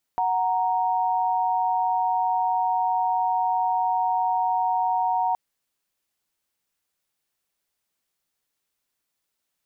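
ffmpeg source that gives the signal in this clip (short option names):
-f lavfi -i "aevalsrc='0.0708*(sin(2*PI*739.99*t)+sin(2*PI*932.33*t))':d=5.17:s=44100"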